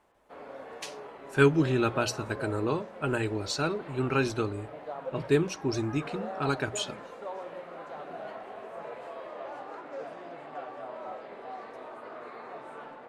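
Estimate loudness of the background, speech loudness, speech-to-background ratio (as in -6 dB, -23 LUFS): -42.0 LUFS, -29.5 LUFS, 12.5 dB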